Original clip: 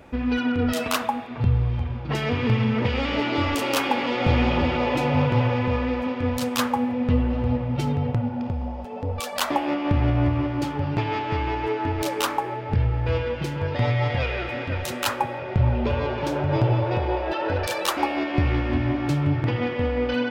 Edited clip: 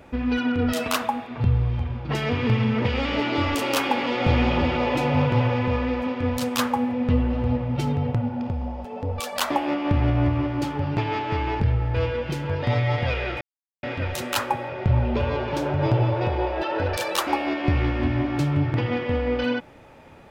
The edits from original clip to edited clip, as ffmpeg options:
-filter_complex "[0:a]asplit=3[a][b][c];[a]atrim=end=11.602[d];[b]atrim=start=12.718:end=14.53,asetpts=PTS-STARTPTS,afade=t=out:st=1.808:d=0.004:c=hsin,apad=pad_dur=0.42[e];[c]atrim=start=14.53,asetpts=PTS-STARTPTS,afade=t=in:d=0.004:c=hsin[f];[e][f]concat=n=2:v=0:a=1[g];[d][g]acrossfade=d=0.004:c1=hsin:c2=hsin"

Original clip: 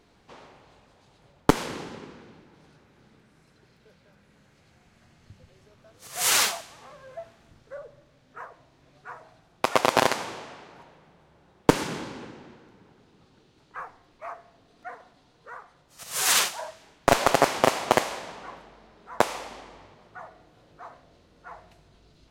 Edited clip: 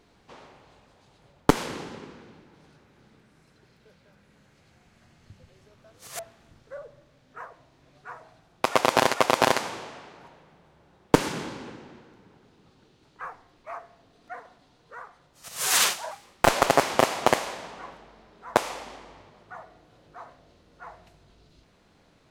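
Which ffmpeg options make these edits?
-filter_complex "[0:a]asplit=5[a][b][c][d][e];[a]atrim=end=6.192[f];[b]atrim=start=7.188:end=10.142[g];[c]atrim=start=9.688:end=16.664[h];[d]atrim=start=16.66:end=17.12,asetpts=PTS-STARTPTS,asetrate=55566,aresample=44100[i];[e]atrim=start=17.116[j];[f][g]acrossfade=d=0.004:c1=hsin:c2=hsin[k];[k][h]acrossfade=d=0.004:c1=hsin:c2=hsin[l];[l][i]acrossfade=d=0.004:c1=hsin:c2=hsin[m];[m][j]acrossfade=d=0.004:c1=hsin:c2=hsin"

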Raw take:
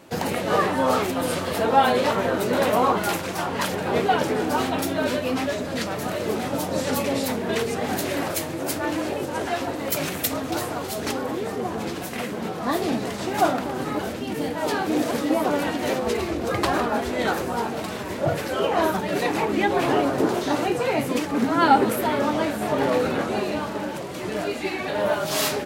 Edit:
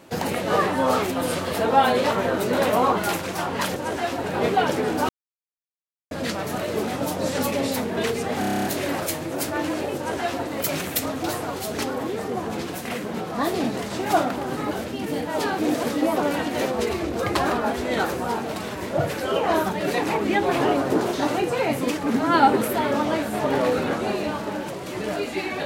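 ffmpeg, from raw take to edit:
-filter_complex "[0:a]asplit=13[a][b][c][d][e][f][g][h][i][j][k][l][m];[a]atrim=end=3.762[n];[b]atrim=start=9.248:end=9.732[o];[c]atrim=start=3.758:end=4.61,asetpts=PTS-STARTPTS,afade=t=out:st=0.848:d=0.004:c=hsin[p];[d]atrim=start=4.61:end=5.63,asetpts=PTS-STARTPTS,volume=0[q];[e]atrim=start=5.63:end=7.952,asetpts=PTS-STARTPTS,afade=t=in:d=0.004:c=hsin[r];[f]atrim=start=7.918:end=7.952[s];[g]atrim=start=7.918:end=7.952[t];[h]atrim=start=7.918:end=7.952[u];[i]atrim=start=7.918:end=7.952[v];[j]atrim=start=7.918:end=7.952[w];[k]atrim=start=7.918:end=7.952[x];[l]atrim=start=7.918:end=7.952[y];[m]atrim=start=7.918[z];[n][o]acrossfade=d=0.004:c1=hsin:c2=hsin[aa];[p][q][r]concat=n=3:v=0:a=1[ab];[aa][ab]acrossfade=d=0.004:c1=hsin:c2=hsin[ac];[ac][s]acrossfade=d=0.004:c1=hsin:c2=hsin[ad];[ad][t]acrossfade=d=0.004:c1=hsin:c2=hsin[ae];[ae][u]acrossfade=d=0.004:c1=hsin:c2=hsin[af];[af][v]acrossfade=d=0.004:c1=hsin:c2=hsin[ag];[ag][w]acrossfade=d=0.004:c1=hsin:c2=hsin[ah];[ah][x]acrossfade=d=0.004:c1=hsin:c2=hsin[ai];[ai][y]acrossfade=d=0.004:c1=hsin:c2=hsin[aj];[aj][z]acrossfade=d=0.004:c1=hsin:c2=hsin"

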